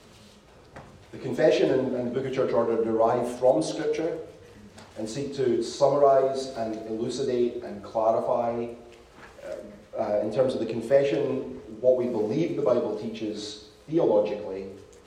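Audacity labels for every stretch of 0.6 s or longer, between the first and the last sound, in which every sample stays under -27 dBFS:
4.150000	5.000000	silence
8.660000	9.510000	silence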